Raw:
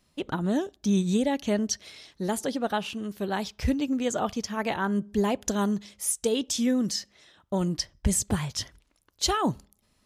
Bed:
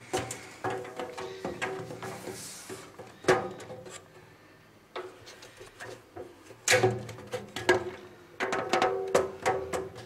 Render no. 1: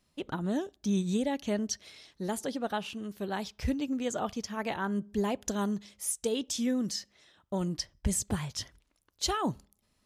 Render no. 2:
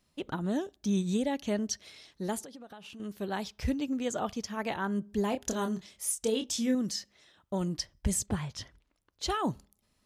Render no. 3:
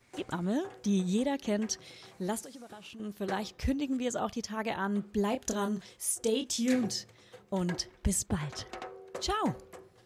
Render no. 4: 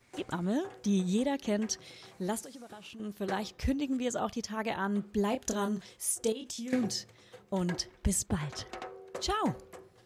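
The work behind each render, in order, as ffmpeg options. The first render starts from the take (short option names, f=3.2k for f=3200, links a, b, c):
-af "volume=-5dB"
-filter_complex "[0:a]asettb=1/sr,asplit=3[a][b][c];[a]atrim=end=2.404[d];[b]atrim=start=2.4:end=3,asetpts=PTS-STARTPTS,afade=t=in:d=0.004:c=qsin,afade=t=out:st=0.596:d=0.004:c=qsin,acompressor=threshold=-43dB:ratio=16:attack=3.2:release=140:knee=1:detection=peak[e];[c]atrim=start=2.996[f];[d][e]acrossfade=d=0.004:c1=hsin:c2=qsin[g];[g][f]acrossfade=d=0.004:c1=qsin:c2=hsin,asettb=1/sr,asplit=3[h][i][j];[h]atrim=end=5.294[k];[i]atrim=start=5.29:end=6.75,asetpts=PTS-STARTPTS,afade=t=in:d=0.004:c=qsin,afade=t=out:st=1.456:d=0.004:c=qsin,asplit=2[l][m];[m]adelay=27,volume=-6.5dB[n];[l][n]amix=inputs=2:normalize=0,atrim=end_sample=64386[o];[j]atrim=start=6.746[p];[k][o]acrossfade=d=0.004:c1=hsin:c2=qsin[q];[q][p]acrossfade=d=0.004:c1=qsin:c2=hsin,asettb=1/sr,asplit=3[r][s][t];[r]atrim=end=8.264[u];[s]atrim=start=8.26:end=9.3,asetpts=PTS-STARTPTS,afade=t=in:d=0.004:c=qsin,afade=t=out:st=1.036:d=0.004:c=qsin,lowpass=f=3.3k:p=1[v];[t]atrim=start=9.296[w];[u][v]acrossfade=d=0.004:c1=hsin:c2=qsin[x];[x][w]acrossfade=d=0.004:c1=qsin:c2=hsin"
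-filter_complex "[1:a]volume=-16.5dB[a];[0:a][a]amix=inputs=2:normalize=0"
-filter_complex "[0:a]asettb=1/sr,asplit=3[a][b][c];[a]atrim=end=6.324[d];[b]atrim=start=6.32:end=6.73,asetpts=PTS-STARTPTS,afade=t=in:d=0.004:c=qsin,afade=t=out:st=0.406:d=0.004:c=qsin,acompressor=threshold=-36dB:ratio=8:attack=3.2:release=140:knee=1:detection=peak[e];[c]atrim=start=6.726[f];[d][e]acrossfade=d=0.004:c1=hsin:c2=qsin[g];[g][f]acrossfade=d=0.004:c1=qsin:c2=hsin"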